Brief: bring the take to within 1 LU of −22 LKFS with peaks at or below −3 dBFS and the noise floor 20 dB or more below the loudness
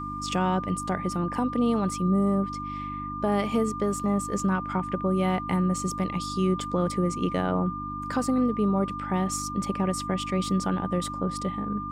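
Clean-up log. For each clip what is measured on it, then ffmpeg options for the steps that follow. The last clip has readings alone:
mains hum 50 Hz; hum harmonics up to 300 Hz; level of the hum −36 dBFS; interfering tone 1,200 Hz; level of the tone −33 dBFS; integrated loudness −27.0 LKFS; sample peak −13.5 dBFS; target loudness −22.0 LKFS
→ -af "bandreject=frequency=50:width_type=h:width=4,bandreject=frequency=100:width_type=h:width=4,bandreject=frequency=150:width_type=h:width=4,bandreject=frequency=200:width_type=h:width=4,bandreject=frequency=250:width_type=h:width=4,bandreject=frequency=300:width_type=h:width=4"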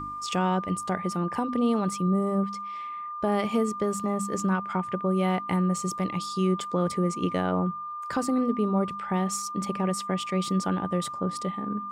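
mains hum none found; interfering tone 1,200 Hz; level of the tone −33 dBFS
→ -af "bandreject=frequency=1200:width=30"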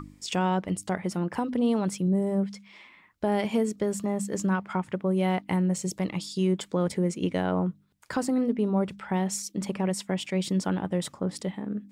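interfering tone none found; integrated loudness −28.5 LKFS; sample peak −14.5 dBFS; target loudness −22.0 LKFS
→ -af "volume=6.5dB"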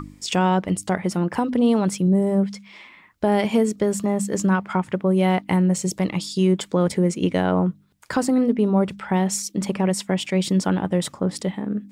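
integrated loudness −22.0 LKFS; sample peak −8.0 dBFS; background noise floor −51 dBFS

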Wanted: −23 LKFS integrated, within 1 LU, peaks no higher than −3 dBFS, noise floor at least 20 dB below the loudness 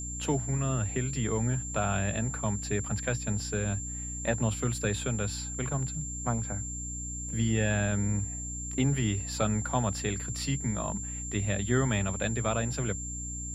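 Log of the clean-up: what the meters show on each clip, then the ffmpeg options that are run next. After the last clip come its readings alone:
mains hum 60 Hz; hum harmonics up to 300 Hz; level of the hum −37 dBFS; interfering tone 7,300 Hz; level of the tone −37 dBFS; integrated loudness −30.5 LKFS; sample peak −13.5 dBFS; target loudness −23.0 LKFS
→ -af "bandreject=frequency=60:width_type=h:width=6,bandreject=frequency=120:width_type=h:width=6,bandreject=frequency=180:width_type=h:width=6,bandreject=frequency=240:width_type=h:width=6,bandreject=frequency=300:width_type=h:width=6"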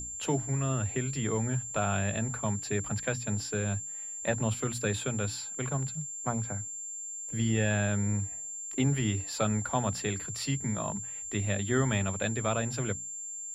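mains hum none found; interfering tone 7,300 Hz; level of the tone −37 dBFS
→ -af "bandreject=frequency=7300:width=30"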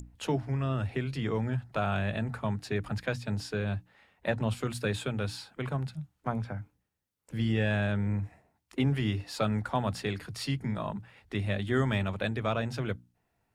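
interfering tone none found; integrated loudness −32.5 LKFS; sample peak −14.5 dBFS; target loudness −23.0 LKFS
→ -af "volume=9.5dB"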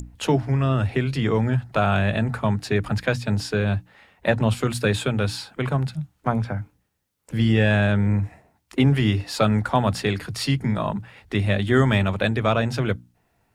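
integrated loudness −23.0 LKFS; sample peak −5.0 dBFS; background noise floor −68 dBFS

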